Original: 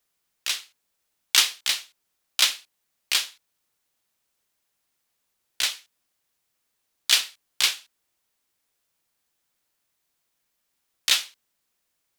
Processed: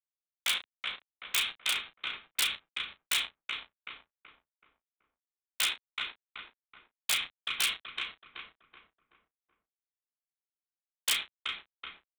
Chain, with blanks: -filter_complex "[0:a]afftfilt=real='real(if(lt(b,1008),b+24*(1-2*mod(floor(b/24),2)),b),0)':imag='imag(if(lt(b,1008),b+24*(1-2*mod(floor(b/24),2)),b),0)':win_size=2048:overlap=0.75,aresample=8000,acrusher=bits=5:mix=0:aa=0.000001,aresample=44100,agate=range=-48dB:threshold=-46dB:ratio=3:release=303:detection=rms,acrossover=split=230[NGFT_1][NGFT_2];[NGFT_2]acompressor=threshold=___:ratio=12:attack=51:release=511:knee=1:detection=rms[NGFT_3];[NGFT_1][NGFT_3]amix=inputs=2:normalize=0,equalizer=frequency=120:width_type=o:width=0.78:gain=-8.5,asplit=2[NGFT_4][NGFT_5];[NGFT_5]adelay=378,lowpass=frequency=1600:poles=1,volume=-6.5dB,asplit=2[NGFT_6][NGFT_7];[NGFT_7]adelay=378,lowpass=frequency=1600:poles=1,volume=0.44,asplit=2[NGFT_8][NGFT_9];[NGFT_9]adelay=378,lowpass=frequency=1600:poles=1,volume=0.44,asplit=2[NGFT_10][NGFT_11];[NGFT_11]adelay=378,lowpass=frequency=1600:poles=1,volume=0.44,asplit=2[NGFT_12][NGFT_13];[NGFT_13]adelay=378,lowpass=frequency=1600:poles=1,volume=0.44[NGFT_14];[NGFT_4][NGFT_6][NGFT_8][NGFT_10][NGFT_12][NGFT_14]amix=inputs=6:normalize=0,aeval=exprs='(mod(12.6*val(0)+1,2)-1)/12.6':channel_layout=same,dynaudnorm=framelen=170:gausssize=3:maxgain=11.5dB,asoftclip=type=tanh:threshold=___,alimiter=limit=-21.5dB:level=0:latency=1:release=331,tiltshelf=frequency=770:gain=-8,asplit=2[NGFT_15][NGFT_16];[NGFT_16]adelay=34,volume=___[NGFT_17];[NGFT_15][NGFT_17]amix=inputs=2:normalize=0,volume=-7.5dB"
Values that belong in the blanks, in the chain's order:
-29dB, -16.5dB, -12dB